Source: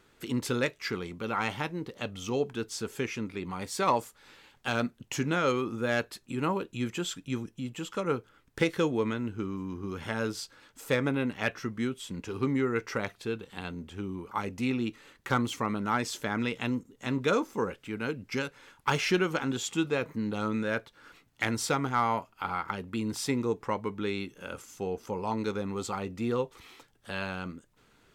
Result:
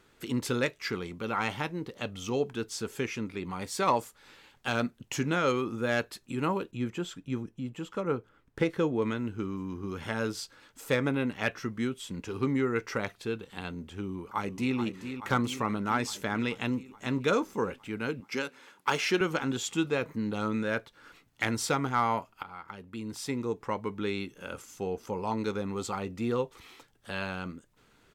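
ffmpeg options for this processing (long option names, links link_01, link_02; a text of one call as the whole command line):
ffmpeg -i in.wav -filter_complex "[0:a]asettb=1/sr,asplit=3[link_01][link_02][link_03];[link_01]atrim=end=6.714[link_04];[link_02]atrim=start=6.71:end=9.02,asetpts=PTS-STARTPTS,afade=type=in:duration=0.004:curve=qsin,afade=type=out:start_time=2.306:duration=0.004:curve=qsin,highshelf=frequency=2300:gain=-10[link_05];[link_03]atrim=start=9.016[link_06];[link_04][link_05]acrossfade=duration=0.004:curve1=hsin:curve2=qsin[link_07];[link_07][link_06]acrossfade=duration=0.004:curve1=qsin:curve2=hsin,asplit=2[link_08][link_09];[link_09]afade=type=in:start_time=14.01:duration=0.01,afade=type=out:start_time=14.77:duration=0.01,aecho=0:1:430|860|1290|1720|2150|2580|3010|3440|3870|4300|4730:0.354813|0.248369|0.173859|0.121701|0.0851907|0.0596335|0.0417434|0.0292204|0.0204543|0.014318|0.0100226[link_10];[link_08][link_10]amix=inputs=2:normalize=0,asettb=1/sr,asplit=3[link_11][link_12][link_13];[link_11]atrim=end=18.204[link_14];[link_12]atrim=start=18.2:end=19.21,asetpts=PTS-STARTPTS,afade=type=in:duration=0.004:curve=qsin,afade=type=out:start_time=1.006:duration=0.004:curve=qsin,highpass=230[link_15];[link_13]atrim=start=19.206[link_16];[link_14][link_15]acrossfade=duration=0.004:curve1=hsin:curve2=qsin[link_17];[link_17][link_16]acrossfade=duration=0.004:curve1=qsin:curve2=hsin,asplit=2[link_18][link_19];[link_18]atrim=end=22.43,asetpts=PTS-STARTPTS,afade=type=out:start_time=22.426:duration=0.004:curve=hsin:silence=0.188365[link_20];[link_19]atrim=start=22.43,asetpts=PTS-STARTPTS,afade=type=in:duration=1.58:silence=0.188365[link_21];[link_20][link_21]concat=n=2:v=0:a=1" out.wav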